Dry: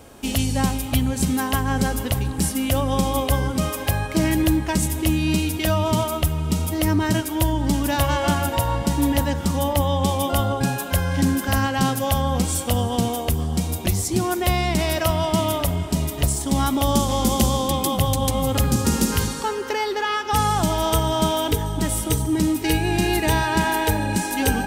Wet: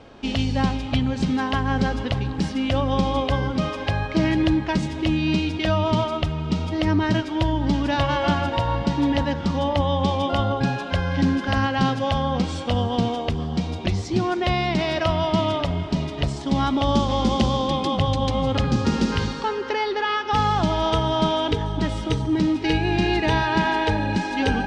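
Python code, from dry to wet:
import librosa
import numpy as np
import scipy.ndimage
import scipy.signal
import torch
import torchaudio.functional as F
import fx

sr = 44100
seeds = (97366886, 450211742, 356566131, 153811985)

y = scipy.signal.sosfilt(scipy.signal.butter(4, 4700.0, 'lowpass', fs=sr, output='sos'), x)
y = fx.peak_eq(y, sr, hz=72.0, db=-13.5, octaves=0.21)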